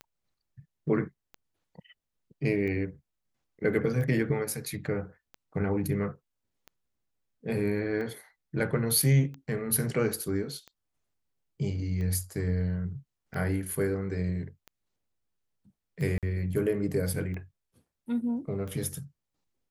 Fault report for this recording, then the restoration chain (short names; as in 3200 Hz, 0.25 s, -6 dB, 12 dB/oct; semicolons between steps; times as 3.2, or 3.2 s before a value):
tick 45 rpm -28 dBFS
16.18–16.23 gap 47 ms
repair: de-click; interpolate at 16.18, 47 ms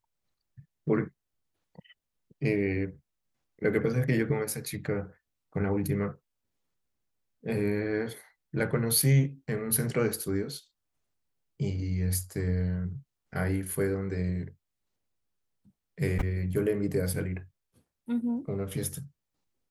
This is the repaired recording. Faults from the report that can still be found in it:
none